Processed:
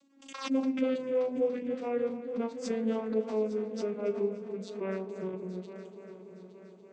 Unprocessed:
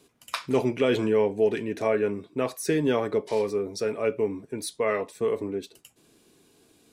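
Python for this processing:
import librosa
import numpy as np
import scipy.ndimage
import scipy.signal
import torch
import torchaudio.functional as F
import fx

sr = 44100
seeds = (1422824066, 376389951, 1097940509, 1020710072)

y = fx.vocoder_glide(x, sr, note=61, semitones=-9)
y = fx.high_shelf(y, sr, hz=6000.0, db=8.0)
y = fx.doubler(y, sr, ms=37.0, db=-11.5)
y = fx.echo_heads(y, sr, ms=288, heads='first and third', feedback_pct=60, wet_db=-13.5)
y = fx.pre_swell(y, sr, db_per_s=110.0)
y = y * 10.0 ** (-6.0 / 20.0)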